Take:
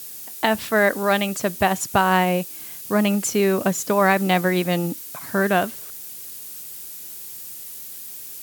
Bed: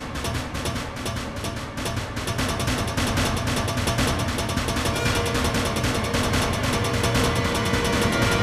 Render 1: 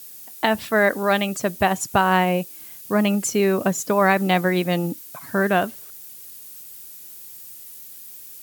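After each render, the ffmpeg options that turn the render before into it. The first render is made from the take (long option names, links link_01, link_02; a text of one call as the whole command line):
ffmpeg -i in.wav -af "afftdn=noise_reduction=6:noise_floor=-37" out.wav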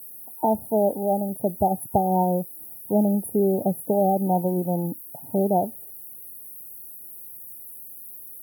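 ffmpeg -i in.wav -af "afftfilt=real='re*(1-between(b*sr/4096,920,9600))':imag='im*(1-between(b*sr/4096,920,9600))':win_size=4096:overlap=0.75,adynamicequalizer=threshold=0.0251:dfrequency=350:dqfactor=0.77:tfrequency=350:tqfactor=0.77:attack=5:release=100:ratio=0.375:range=2.5:mode=cutabove:tftype=bell" out.wav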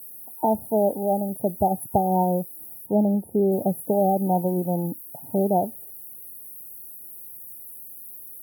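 ffmpeg -i in.wav -filter_complex "[0:a]asettb=1/sr,asplit=3[link_01][link_02][link_03];[link_01]atrim=end=2.864[link_04];[link_02]atrim=start=2.86:end=3.52,asetpts=PTS-STARTPTS,afade=type=in:duration=0.004:curve=qsin,afade=type=out:start_time=0.656:duration=0.004:curve=qsin,acrossover=split=2700[link_05][link_06];[link_06]acompressor=threshold=-47dB:ratio=4:attack=1:release=60[link_07];[link_05][link_07]amix=inputs=2:normalize=0[link_08];[link_03]atrim=start=3.516[link_09];[link_04][link_08]acrossfade=duration=0.004:curve1=hsin:curve2=qsin[link_10];[link_10][link_09]acrossfade=duration=0.004:curve1=qsin:curve2=hsin" out.wav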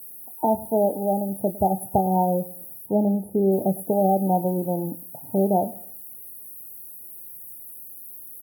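ffmpeg -i in.wav -filter_complex "[0:a]asplit=2[link_01][link_02];[link_02]adelay=26,volume=-12dB[link_03];[link_01][link_03]amix=inputs=2:normalize=0,asplit=2[link_04][link_05];[link_05]adelay=106,lowpass=frequency=1300:poles=1,volume=-18.5dB,asplit=2[link_06][link_07];[link_07]adelay=106,lowpass=frequency=1300:poles=1,volume=0.35,asplit=2[link_08][link_09];[link_09]adelay=106,lowpass=frequency=1300:poles=1,volume=0.35[link_10];[link_04][link_06][link_08][link_10]amix=inputs=4:normalize=0" out.wav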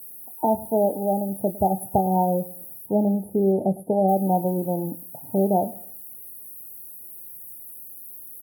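ffmpeg -i in.wav -filter_complex "[0:a]asplit=3[link_01][link_02][link_03];[link_01]afade=type=out:start_time=3.51:duration=0.02[link_04];[link_02]lowpass=frequency=6000:width_type=q:width=2.2,afade=type=in:start_time=3.51:duration=0.02,afade=type=out:start_time=4.07:duration=0.02[link_05];[link_03]afade=type=in:start_time=4.07:duration=0.02[link_06];[link_04][link_05][link_06]amix=inputs=3:normalize=0" out.wav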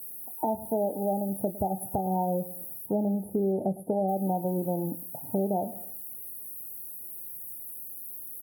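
ffmpeg -i in.wav -af "alimiter=limit=-13.5dB:level=0:latency=1:release=244,acompressor=threshold=-28dB:ratio=2" out.wav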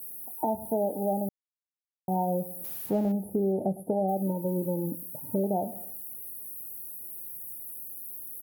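ffmpeg -i in.wav -filter_complex "[0:a]asettb=1/sr,asplit=3[link_01][link_02][link_03];[link_01]atrim=end=2.644[link_04];[link_02]atrim=start=2.64:end=3.12,asetpts=PTS-STARTPTS,afade=type=in:duration=0.004:curve=qsin,afade=type=out:start_time=0.476:duration=0.004:curve=qsin,aeval=exprs='val(0)+0.5*0.00891*sgn(val(0))':channel_layout=same[link_05];[link_03]atrim=start=3.116[link_06];[link_04][link_05]acrossfade=duration=0.004:curve1=hsin:curve2=qsin[link_07];[link_07][link_06]acrossfade=duration=0.004:curve1=qsin:curve2=hsin,asettb=1/sr,asplit=3[link_08][link_09][link_10];[link_08]atrim=end=4.224[link_11];[link_09]atrim=start=4.22:end=5.44,asetpts=PTS-STARTPTS,afade=type=in:duration=0.004:curve=qsin,afade=type=out:start_time=1.216:duration=0.004:curve=qsin,asuperstop=centerf=750:order=8:qfactor=3.3[link_12];[link_10]atrim=start=5.436[link_13];[link_11][link_12]acrossfade=duration=0.004:curve1=hsin:curve2=qsin[link_14];[link_14][link_13]acrossfade=duration=0.004:curve1=qsin:curve2=hsin,asplit=3[link_15][link_16][link_17];[link_15]atrim=end=1.29,asetpts=PTS-STARTPTS,afade=type=out:start_time=1.286:duration=0.004:curve=hsin[link_18];[link_16]atrim=start=1.29:end=2.08,asetpts=PTS-STARTPTS,volume=0[link_19];[link_17]atrim=start=2.08,asetpts=PTS-STARTPTS,afade=type=in:duration=0.004:curve=hsin[link_20];[link_18][link_19][link_20]concat=n=3:v=0:a=1" out.wav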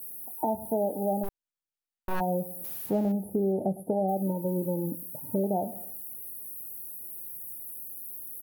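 ffmpeg -i in.wav -filter_complex "[0:a]asplit=3[link_01][link_02][link_03];[link_01]afade=type=out:start_time=1.23:duration=0.02[link_04];[link_02]aeval=exprs='abs(val(0))':channel_layout=same,afade=type=in:start_time=1.23:duration=0.02,afade=type=out:start_time=2.19:duration=0.02[link_05];[link_03]afade=type=in:start_time=2.19:duration=0.02[link_06];[link_04][link_05][link_06]amix=inputs=3:normalize=0" out.wav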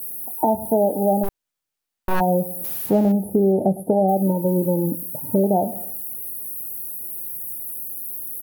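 ffmpeg -i in.wav -af "volume=9.5dB" out.wav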